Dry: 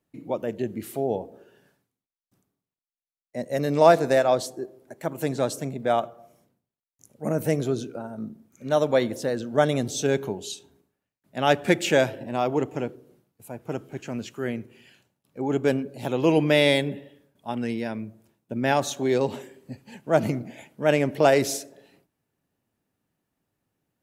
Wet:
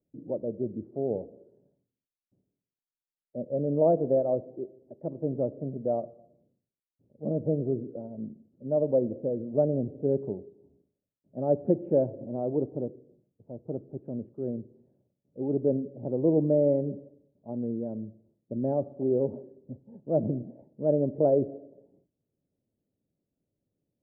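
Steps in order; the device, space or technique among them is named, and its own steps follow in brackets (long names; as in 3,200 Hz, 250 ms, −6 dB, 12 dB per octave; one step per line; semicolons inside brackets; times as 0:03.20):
under water (low-pass filter 540 Hz 24 dB per octave; parametric band 580 Hz +5.5 dB 0.29 octaves)
level −3 dB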